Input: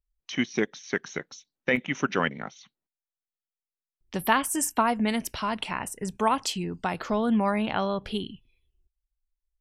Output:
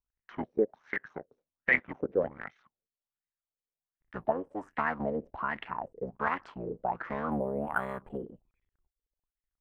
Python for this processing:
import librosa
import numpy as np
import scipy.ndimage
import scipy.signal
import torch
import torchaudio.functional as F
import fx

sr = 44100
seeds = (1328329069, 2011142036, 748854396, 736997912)

y = fx.cycle_switch(x, sr, every=3, mode='muted')
y = fx.filter_lfo_lowpass(y, sr, shape='sine', hz=1.3, low_hz=450.0, high_hz=2000.0, q=6.3)
y = fx.resample_linear(y, sr, factor=4, at=(7.31, 8.25))
y = y * librosa.db_to_amplitude(-9.0)